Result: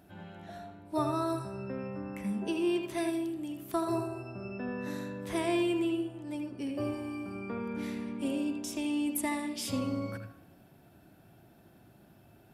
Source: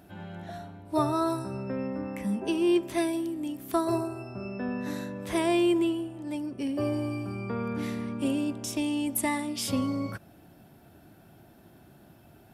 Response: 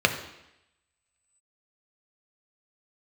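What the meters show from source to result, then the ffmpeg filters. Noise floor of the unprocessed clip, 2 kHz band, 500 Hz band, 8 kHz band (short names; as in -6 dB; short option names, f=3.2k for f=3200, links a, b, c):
-55 dBFS, -3.5 dB, -4.5 dB, -5.0 dB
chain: -filter_complex "[0:a]asplit=2[a][b];[1:a]atrim=start_sample=2205,adelay=79[c];[b][c]afir=irnorm=-1:irlink=0,volume=-21.5dB[d];[a][d]amix=inputs=2:normalize=0,volume=-5dB"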